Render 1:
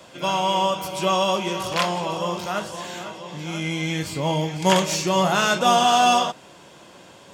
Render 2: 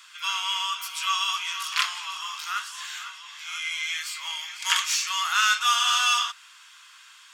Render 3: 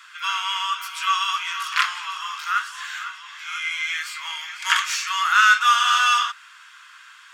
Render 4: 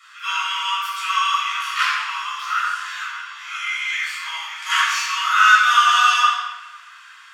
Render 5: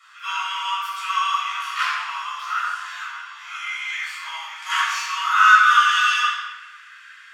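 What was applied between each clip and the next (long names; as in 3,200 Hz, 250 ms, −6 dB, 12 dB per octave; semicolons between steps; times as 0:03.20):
elliptic high-pass filter 1,200 Hz, stop band 60 dB; level +1.5 dB
parametric band 1,500 Hz +12 dB 1.4 octaves; level −3 dB
rectangular room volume 960 cubic metres, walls mixed, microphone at 6.4 metres; level −9 dB
high-pass filter sweep 690 Hz → 1,700 Hz, 0:05.16–0:05.95; level −5 dB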